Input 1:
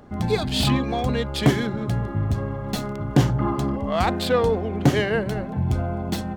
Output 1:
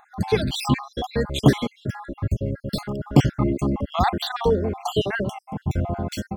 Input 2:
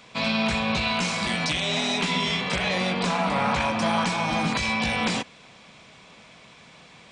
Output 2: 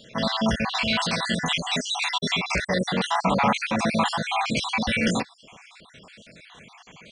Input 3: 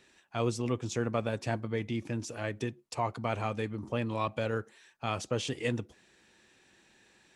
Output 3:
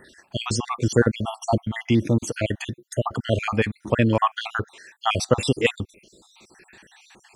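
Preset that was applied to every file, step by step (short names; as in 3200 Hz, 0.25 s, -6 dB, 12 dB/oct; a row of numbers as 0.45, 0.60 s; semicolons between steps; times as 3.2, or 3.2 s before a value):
random spectral dropouts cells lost 59%; match loudness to -24 LUFS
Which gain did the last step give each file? +2.5, +4.5, +15.5 dB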